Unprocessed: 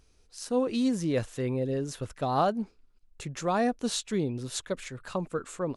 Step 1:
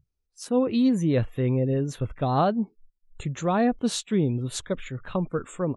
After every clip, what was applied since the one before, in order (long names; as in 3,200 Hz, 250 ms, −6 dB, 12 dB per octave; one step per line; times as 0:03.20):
noise reduction from a noise print of the clip's start 28 dB
low-shelf EQ 210 Hz +10 dB
level +1.5 dB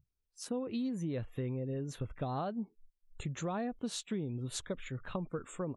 downward compressor, threshold −28 dBFS, peak gain reduction 10.5 dB
level −5.5 dB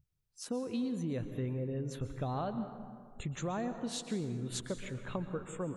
dense smooth reverb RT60 2 s, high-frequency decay 0.5×, pre-delay 110 ms, DRR 9 dB